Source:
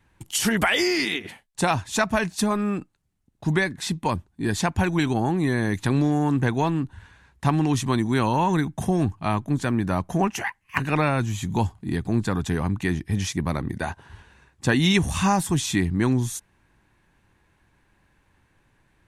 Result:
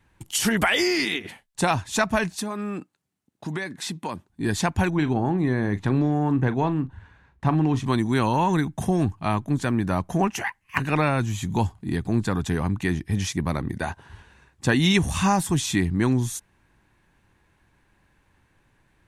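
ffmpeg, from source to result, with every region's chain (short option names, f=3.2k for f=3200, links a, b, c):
-filter_complex "[0:a]asettb=1/sr,asplit=3[a][b][c];[a]atrim=end=2.374[d];[b]atrim=start=2.37:end=4.3,asetpts=PTS-STARTPTS,afade=t=in:d=0.004:c=qsin,afade=t=out:st=1.926:d=0.004:c=qsin,highpass=180,acompressor=threshold=-27dB:ratio=3:attack=3.2:release=140:knee=1:detection=peak[e];[c]atrim=start=4.296[f];[d][e]acrossfade=d=0.004:c1=hsin:c2=qsin[g];[g][f]acrossfade=d=0.004:c1=qsin:c2=hsin,asettb=1/sr,asplit=3[h][i][j];[h]atrim=end=4.904[k];[i]atrim=start=4.9:end=7.85,asetpts=PTS-STARTPTS,afade=t=in:d=0.004:c=qsin,afade=t=out:st=2.946:d=0.004:c=qsin,lowpass=f=1.6k:p=1,asplit=2[l][m];[m]adelay=39,volume=-14dB[n];[l][n]amix=inputs=2:normalize=0,atrim=end_sample=130095[o];[j]atrim=start=7.846[p];[k][o]acrossfade=d=0.004:c1=hsin:c2=qsin[q];[q][p]acrossfade=d=0.004:c1=qsin:c2=hsin"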